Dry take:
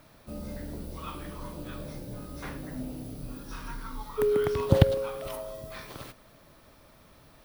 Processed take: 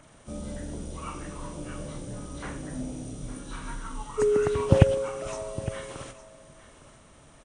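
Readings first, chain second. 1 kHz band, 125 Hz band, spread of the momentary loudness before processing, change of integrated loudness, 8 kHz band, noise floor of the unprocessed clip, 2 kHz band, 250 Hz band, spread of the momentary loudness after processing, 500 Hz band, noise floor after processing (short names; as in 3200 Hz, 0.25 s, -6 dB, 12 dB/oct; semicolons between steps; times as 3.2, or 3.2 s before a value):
+2.0 dB, +2.0 dB, 17 LU, +2.0 dB, +7.5 dB, -57 dBFS, +2.0 dB, +2.0 dB, 16 LU, +2.0 dB, -54 dBFS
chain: nonlinear frequency compression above 1900 Hz 1.5:1; echo 0.86 s -15.5 dB; gain +2 dB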